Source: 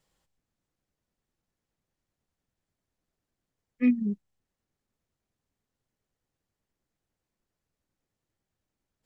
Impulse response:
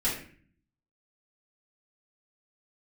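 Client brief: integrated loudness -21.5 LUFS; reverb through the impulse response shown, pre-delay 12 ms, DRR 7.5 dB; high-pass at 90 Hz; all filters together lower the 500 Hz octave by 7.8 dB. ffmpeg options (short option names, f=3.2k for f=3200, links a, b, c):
-filter_complex "[0:a]highpass=90,equalizer=f=500:t=o:g=-8.5,asplit=2[a][b];[1:a]atrim=start_sample=2205,adelay=12[c];[b][c]afir=irnorm=-1:irlink=0,volume=-16dB[d];[a][d]amix=inputs=2:normalize=0,volume=6.5dB"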